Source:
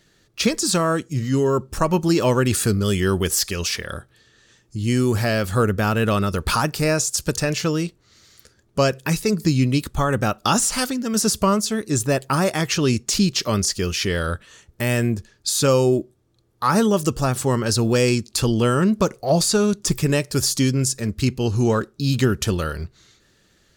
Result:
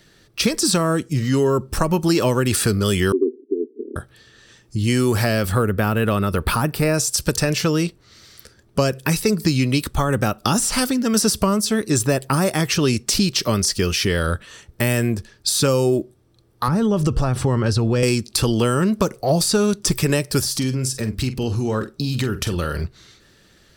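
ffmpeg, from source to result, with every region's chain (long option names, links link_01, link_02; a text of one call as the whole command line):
ffmpeg -i in.wav -filter_complex "[0:a]asettb=1/sr,asplit=3[link_01][link_02][link_03];[link_01]atrim=end=3.124[link_04];[link_02]atrim=start=3.12:end=3.96,asetpts=PTS-STARTPTS,afade=type=in:duration=0.004:curve=qsin,afade=type=out:start_time=0.836:duration=0.004:curve=qsin,asuperpass=centerf=320:order=12:qfactor=1.7,acontrast=27[link_05];[link_03]atrim=start=3.956[link_06];[link_04][link_05]acrossfade=duration=0.004:curve1=hsin:curve2=qsin[link_07];[link_07][link_06]acrossfade=duration=0.004:curve1=qsin:curve2=hsin,asettb=1/sr,asplit=3[link_08][link_09][link_10];[link_08]atrim=end=5.524[link_11];[link_09]atrim=start=5.52:end=6.94,asetpts=PTS-STARTPTS,afade=type=in:duration=0.004:curve=qsin,afade=type=out:start_time=1.416:duration=0.004:curve=qsin,deesser=0.4,equalizer=frequency=6100:width_type=o:width=1.1:gain=-10.5[link_12];[link_10]atrim=start=6.936[link_13];[link_11][link_12]acrossfade=duration=0.004:curve1=hsin:curve2=qsin[link_14];[link_14][link_13]acrossfade=duration=0.004:curve1=qsin:curve2=hsin,asettb=1/sr,asplit=3[link_15][link_16][link_17];[link_15]atrim=end=16.684[link_18];[link_16]atrim=start=16.68:end=18.03,asetpts=PTS-STARTPTS,afade=type=in:duration=0.004:curve=qsin,afade=type=out:start_time=1.346:duration=0.004:curve=qsin,acompressor=threshold=-20dB:ratio=5:attack=3.2:release=140:knee=1:detection=peak,aemphasis=mode=reproduction:type=bsi[link_19];[link_17]atrim=start=18.026[link_20];[link_18][link_19]acrossfade=duration=0.004:curve1=hsin:curve2=qsin[link_21];[link_21][link_20]acrossfade=duration=0.004:curve1=qsin:curve2=hsin,asettb=1/sr,asplit=3[link_22][link_23][link_24];[link_22]atrim=end=20.404[link_25];[link_23]atrim=start=20.4:end=22.84,asetpts=PTS-STARTPTS,afade=type=in:duration=0.004:curve=qsin,afade=type=out:start_time=2.436:duration=0.004:curve=qsin,acompressor=threshold=-25dB:ratio=4:attack=3.2:release=140:knee=1:detection=peak,asplit=2[link_26][link_27];[link_27]adelay=46,volume=-11dB[link_28];[link_26][link_28]amix=inputs=2:normalize=0,atrim=end_sample=107604[link_29];[link_24]atrim=start=22.836[link_30];[link_25][link_29]acrossfade=duration=0.004:curve1=hsin:curve2=qsin[link_31];[link_31][link_30]acrossfade=duration=0.004:curve1=qsin:curve2=hsin,bandreject=frequency=6800:width=7.3,acrossover=split=420|7000[link_32][link_33][link_34];[link_32]acompressor=threshold=-24dB:ratio=4[link_35];[link_33]acompressor=threshold=-27dB:ratio=4[link_36];[link_34]acompressor=threshold=-29dB:ratio=4[link_37];[link_35][link_36][link_37]amix=inputs=3:normalize=0,volume=6dB" out.wav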